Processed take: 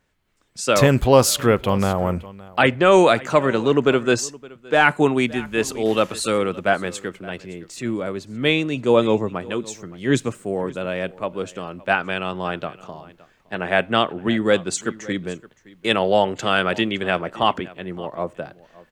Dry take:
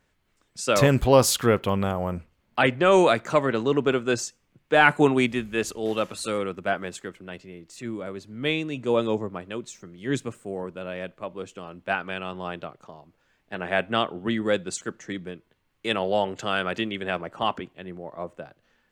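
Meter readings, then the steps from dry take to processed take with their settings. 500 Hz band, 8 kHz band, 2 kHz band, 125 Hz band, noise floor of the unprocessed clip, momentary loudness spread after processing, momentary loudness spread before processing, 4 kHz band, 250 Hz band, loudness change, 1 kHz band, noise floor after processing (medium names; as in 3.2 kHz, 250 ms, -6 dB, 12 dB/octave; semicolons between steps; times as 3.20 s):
+5.0 dB, +4.5 dB, +4.5 dB, +4.5 dB, -70 dBFS, 15 LU, 20 LU, +5.5 dB, +5.0 dB, +4.5 dB, +4.5 dB, -57 dBFS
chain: on a send: delay 567 ms -21 dB; on the sum: level rider gain up to 8 dB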